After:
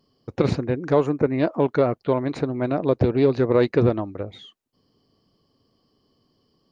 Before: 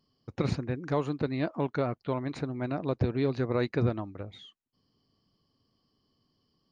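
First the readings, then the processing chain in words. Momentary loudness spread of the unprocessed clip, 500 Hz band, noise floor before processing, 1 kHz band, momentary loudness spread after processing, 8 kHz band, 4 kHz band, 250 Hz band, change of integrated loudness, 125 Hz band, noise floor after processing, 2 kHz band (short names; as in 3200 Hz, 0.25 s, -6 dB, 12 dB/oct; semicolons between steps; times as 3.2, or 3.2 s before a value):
11 LU, +11.5 dB, -76 dBFS, +8.0 dB, 9 LU, n/a, +5.5 dB, +8.5 dB, +9.5 dB, +6.0 dB, -68 dBFS, +6.0 dB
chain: spectral gain 1.06–1.39, 2500–5300 Hz -18 dB; bell 480 Hz +6.5 dB 1.5 oct; Doppler distortion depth 0.15 ms; gain +5.5 dB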